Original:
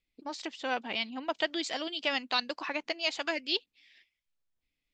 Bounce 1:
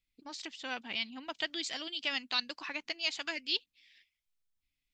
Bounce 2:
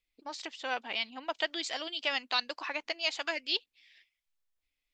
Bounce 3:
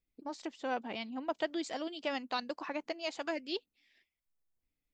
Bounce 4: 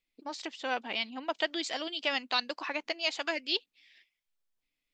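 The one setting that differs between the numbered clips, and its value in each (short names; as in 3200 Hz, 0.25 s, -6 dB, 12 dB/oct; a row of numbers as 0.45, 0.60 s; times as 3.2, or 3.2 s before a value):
bell, frequency: 570, 170, 3300, 63 Hz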